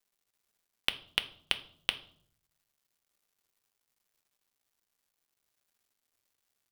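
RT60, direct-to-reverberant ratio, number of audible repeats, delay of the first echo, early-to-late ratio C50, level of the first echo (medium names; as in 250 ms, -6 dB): 0.60 s, 8.5 dB, no echo, no echo, 16.5 dB, no echo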